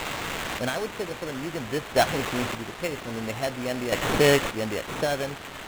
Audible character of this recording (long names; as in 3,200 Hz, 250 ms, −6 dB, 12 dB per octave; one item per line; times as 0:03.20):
a quantiser's noise floor 6 bits, dither triangular
chopped level 0.51 Hz, depth 60%, duty 30%
aliases and images of a low sample rate 4,800 Hz, jitter 0%
IMA ADPCM